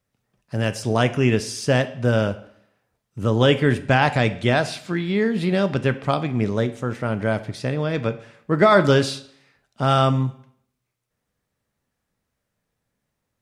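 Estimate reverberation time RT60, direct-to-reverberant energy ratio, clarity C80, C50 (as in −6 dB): 0.65 s, 11.0 dB, 17.5 dB, 15.0 dB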